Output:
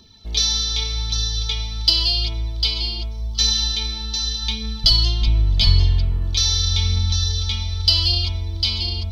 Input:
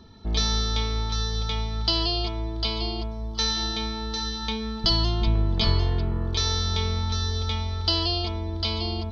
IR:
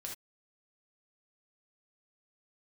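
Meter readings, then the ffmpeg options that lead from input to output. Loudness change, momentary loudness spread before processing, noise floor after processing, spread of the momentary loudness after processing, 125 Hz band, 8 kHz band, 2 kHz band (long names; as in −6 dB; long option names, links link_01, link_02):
+6.5 dB, 6 LU, −29 dBFS, 8 LU, +5.0 dB, can't be measured, +2.0 dB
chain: -af "asubboost=boost=4:cutoff=160,aexciter=amount=5.2:drive=4.2:freq=2200,aphaser=in_gain=1:out_gain=1:delay=3.9:decay=0.34:speed=0.86:type=triangular,volume=-6.5dB"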